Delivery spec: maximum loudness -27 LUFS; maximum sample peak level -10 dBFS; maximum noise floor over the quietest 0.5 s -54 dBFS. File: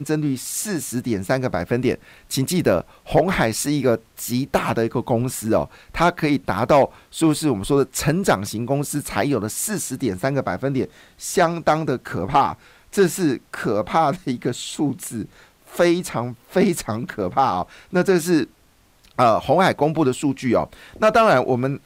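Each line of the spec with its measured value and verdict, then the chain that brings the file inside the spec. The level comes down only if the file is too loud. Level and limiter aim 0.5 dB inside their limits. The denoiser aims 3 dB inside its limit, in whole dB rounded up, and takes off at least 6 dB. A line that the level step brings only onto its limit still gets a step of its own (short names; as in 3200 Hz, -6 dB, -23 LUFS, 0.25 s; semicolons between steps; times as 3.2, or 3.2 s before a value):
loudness -21.0 LUFS: fail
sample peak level -5.0 dBFS: fail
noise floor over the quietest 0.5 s -56 dBFS: OK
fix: gain -6.5 dB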